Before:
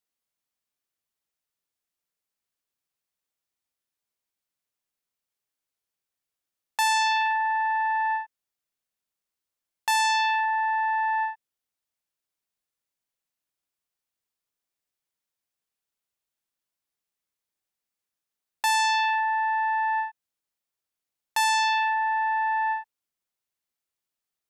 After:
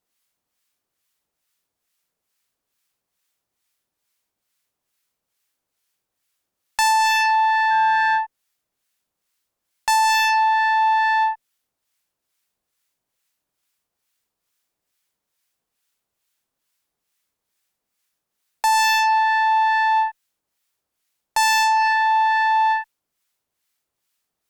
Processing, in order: harmonic tremolo 2.3 Hz, depth 70%, crossover 1.1 kHz; Chebyshev shaper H 3 -13 dB, 5 -14 dB, 6 -36 dB, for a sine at -15.5 dBFS; 7.70–8.17 s: whistle 1.6 kHz -37 dBFS; in parallel at -10 dB: saturation -30.5 dBFS, distortion -13 dB; on the sum: trim +9 dB

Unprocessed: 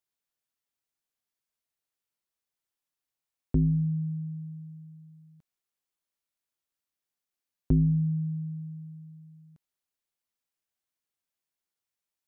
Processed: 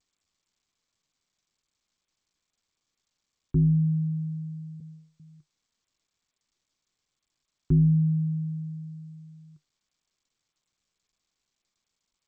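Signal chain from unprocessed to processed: FFT filter 100 Hz 0 dB, 150 Hz +10 dB, 220 Hz -8 dB, 340 Hz +10 dB, 580 Hz -26 dB, 850 Hz -3 dB, 1.4 kHz +4 dB, 2.5 kHz -18 dB, 3.6 kHz -16 dB; 4.80–5.20 s: gate -41 dBFS, range -60 dB; trim -4 dB; G.722 64 kbps 16 kHz

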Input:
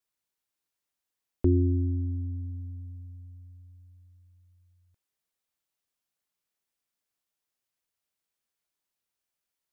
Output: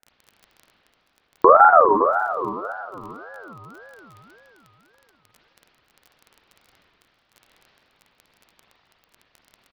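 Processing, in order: ladder band-pass 300 Hz, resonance 25%; bass shelf 460 Hz -6.5 dB; crackle 25 per s -68 dBFS; frequency-shifting echo 499 ms, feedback 33%, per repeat +100 Hz, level -20.5 dB; spring tank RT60 2.9 s, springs 40/51 ms, chirp 35 ms, DRR -5 dB; loudness maximiser +35.5 dB; ring modulator with a swept carrier 890 Hz, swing 25%, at 1.8 Hz

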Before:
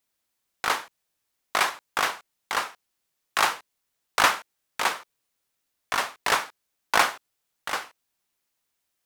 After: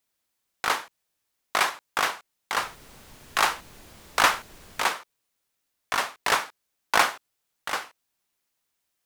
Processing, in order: 2.56–4.86 s: added noise pink -49 dBFS

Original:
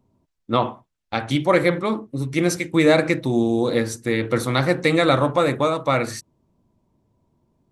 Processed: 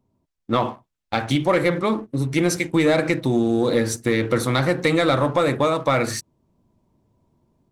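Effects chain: level rider gain up to 6 dB; waveshaping leveller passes 1; compression 2:1, threshold -15 dBFS, peak gain reduction 5 dB; trim -2.5 dB

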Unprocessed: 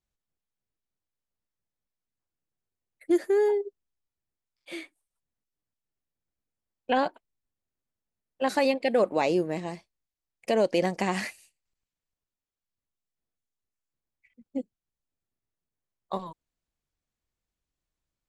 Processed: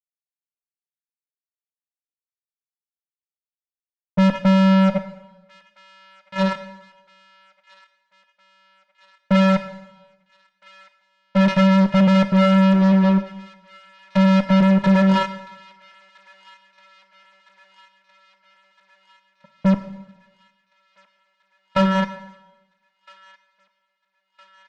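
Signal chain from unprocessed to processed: expander on every frequency bin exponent 1.5; peaking EQ 1.5 kHz +10.5 dB 1.9 oct; band-stop 2.1 kHz, Q 7.3; in parallel at -0.5 dB: compression, threshold -33 dBFS, peak gain reduction 16 dB; on the sum: vocoder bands 4, square 258 Hz; fuzz box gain 38 dB, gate -47 dBFS; distance through air 83 m; on a send: feedback echo behind a high-pass 972 ms, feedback 64%, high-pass 2 kHz, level -21 dB; on the sum: plate-style reverb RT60 0.78 s, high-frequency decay 0.95×, DRR 9.5 dB; speed mistake 45 rpm record played at 33 rpm

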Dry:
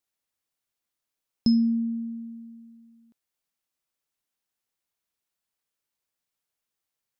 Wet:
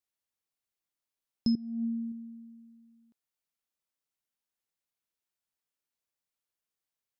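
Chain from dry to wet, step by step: 1.55–2.12 s: compressor with a negative ratio -27 dBFS, ratio -0.5; trim -6 dB

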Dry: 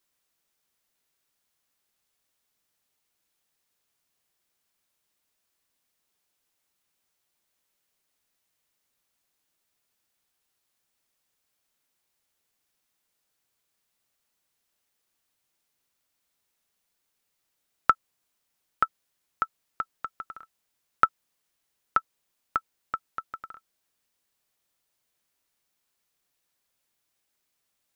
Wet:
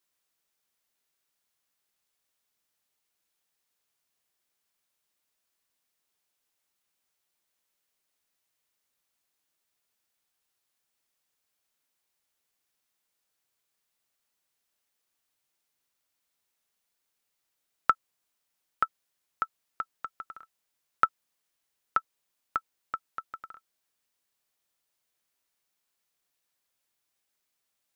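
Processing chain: bass shelf 330 Hz -4 dB; trim -2.5 dB

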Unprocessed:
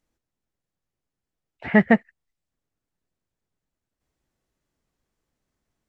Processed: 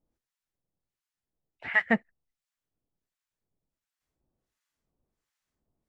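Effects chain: harmonic tremolo 1.4 Hz, depth 100%, crossover 980 Hz

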